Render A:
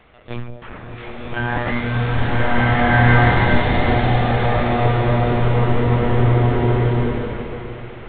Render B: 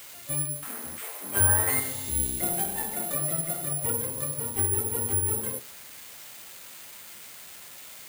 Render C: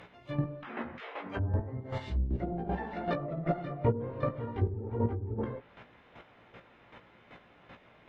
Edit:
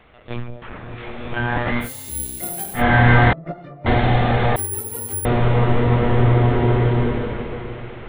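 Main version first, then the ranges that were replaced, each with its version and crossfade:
A
0:01.85–0:02.78: punch in from B, crossfade 0.10 s
0:03.33–0:03.86: punch in from C
0:04.56–0:05.25: punch in from B

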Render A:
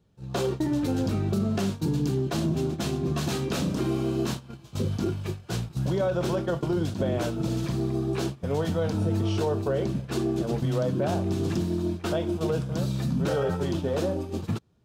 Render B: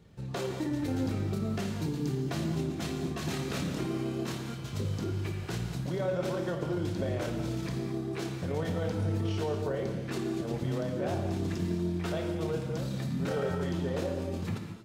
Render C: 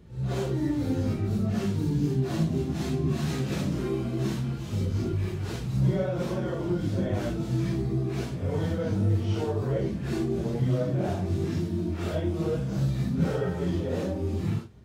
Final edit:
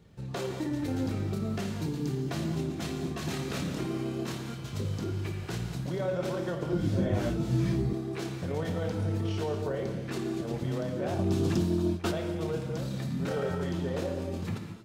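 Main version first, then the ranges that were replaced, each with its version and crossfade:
B
0:06.73–0:07.93: punch in from C
0:11.19–0:12.11: punch in from A

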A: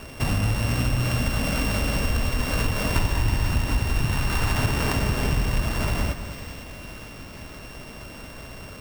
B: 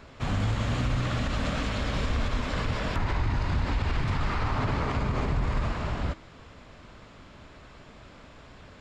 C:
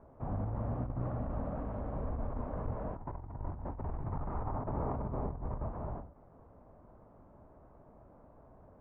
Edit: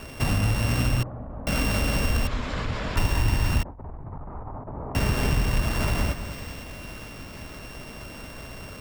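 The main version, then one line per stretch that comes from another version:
A
0:01.03–0:01.47: punch in from C
0:02.27–0:02.97: punch in from B
0:03.63–0:04.95: punch in from C

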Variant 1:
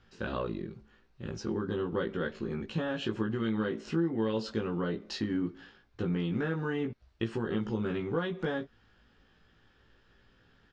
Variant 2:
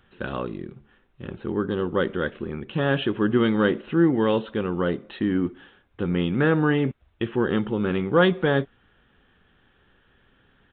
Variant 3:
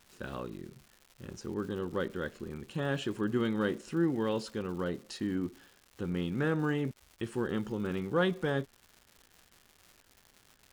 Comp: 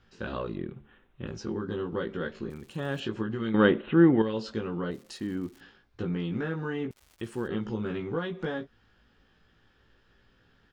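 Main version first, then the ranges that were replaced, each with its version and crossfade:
1
0:00.56–0:01.27: punch in from 2
0:02.50–0:03.00: punch in from 3
0:03.54–0:04.22: punch in from 2
0:04.91–0:05.61: punch in from 3
0:06.91–0:07.49: punch in from 3

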